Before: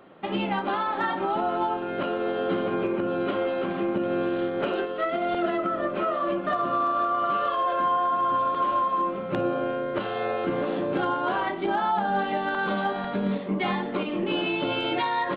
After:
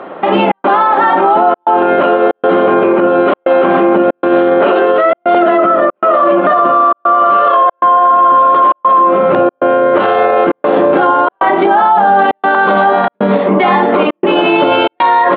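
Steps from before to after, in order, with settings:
gate pattern "xxxx.xxxxxxx.x" 117 BPM −60 dB
resonant band-pass 810 Hz, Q 0.77
boost into a limiter +27.5 dB
level −1 dB

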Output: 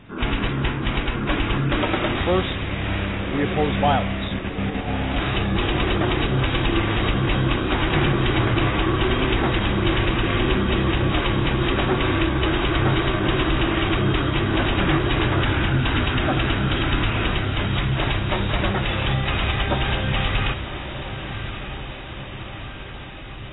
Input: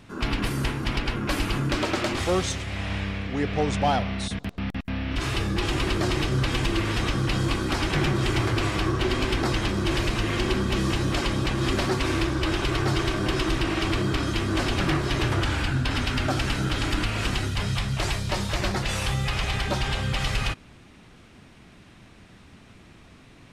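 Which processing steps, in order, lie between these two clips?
feedback delay with all-pass diffusion 1,187 ms, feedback 66%, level −10 dB
level +3.5 dB
AAC 16 kbit/s 16,000 Hz

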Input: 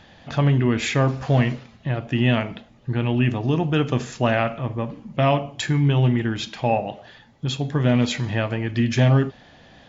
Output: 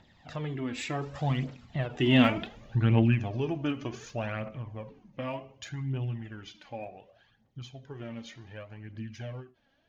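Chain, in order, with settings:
source passing by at 0:02.44, 20 m/s, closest 5.4 metres
phase shifter 0.67 Hz, delay 3.8 ms, feedback 54%
in parallel at −2 dB: downward compressor, threshold −41 dBFS, peak gain reduction 22 dB
on the sum: every ending faded ahead of time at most 190 dB per second

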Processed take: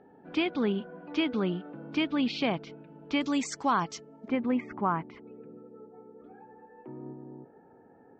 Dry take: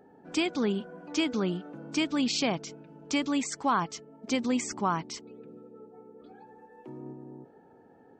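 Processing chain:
low-pass filter 3,600 Hz 24 dB per octave, from 0:03.21 7,300 Hz, from 0:04.28 2,200 Hz

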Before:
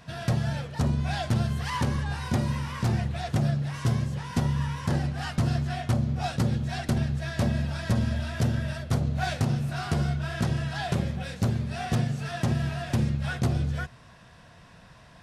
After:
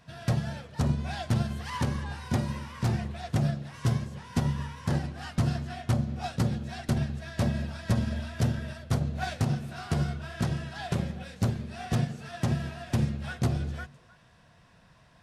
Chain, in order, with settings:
on a send: echo through a band-pass that steps 102 ms, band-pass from 160 Hz, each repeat 1.4 octaves, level −9 dB
on the sum: expander for the loud parts 1.5 to 1, over −35 dBFS

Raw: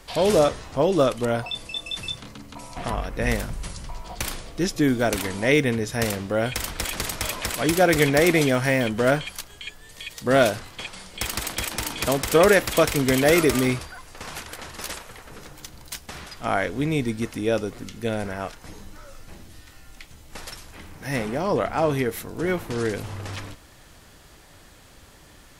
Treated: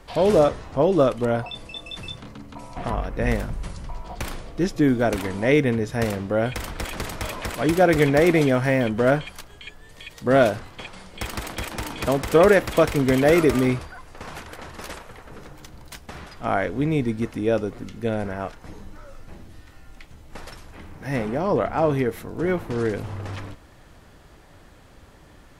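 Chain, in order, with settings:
high-shelf EQ 2,600 Hz −11.5 dB
level +2 dB

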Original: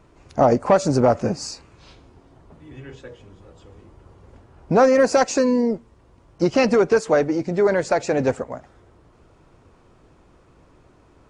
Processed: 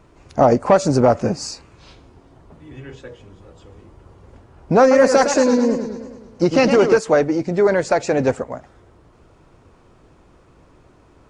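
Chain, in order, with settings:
0:04.80–0:06.98: feedback echo with a swinging delay time 106 ms, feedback 60%, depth 143 cents, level −8 dB
level +2.5 dB

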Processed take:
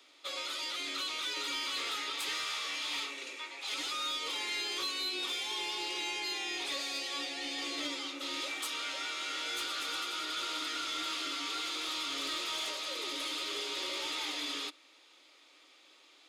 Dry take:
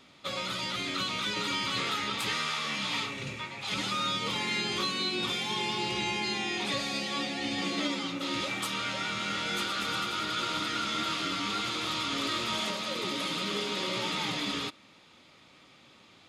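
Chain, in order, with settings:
Chebyshev high-pass filter 290 Hz, order 5
high-shelf EQ 2,400 Hz +7.5 dB
soft clipping −22 dBFS, distortion −19 dB
level −6.5 dB

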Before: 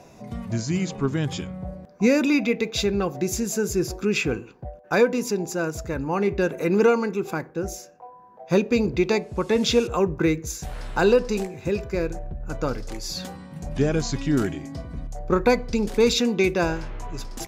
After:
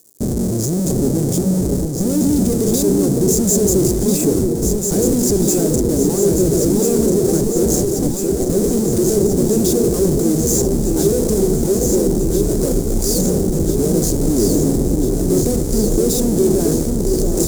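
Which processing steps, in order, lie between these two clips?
comparator with hysteresis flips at −37 dBFS
high-shelf EQ 11,000 Hz −10.5 dB
surface crackle 230 per second −41 dBFS
drawn EQ curve 110 Hz 0 dB, 210 Hz +4 dB, 390 Hz +8 dB, 1,000 Hz −15 dB, 2,800 Hz −20 dB, 7,300 Hz +11 dB
delay that swaps between a low-pass and a high-pass 671 ms, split 1,100 Hz, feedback 84%, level −3.5 dB
level +3.5 dB

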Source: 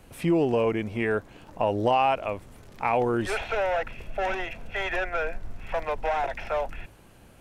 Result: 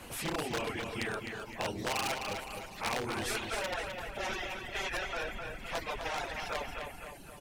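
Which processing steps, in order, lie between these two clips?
random phases in long frames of 50 ms
reverb reduction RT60 1.7 s
wave folding −18.5 dBFS
on a send: repeating echo 257 ms, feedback 31%, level −10.5 dB
on the sum: every bin compressed towards the loudest bin 2 to 1
level −2.5 dB

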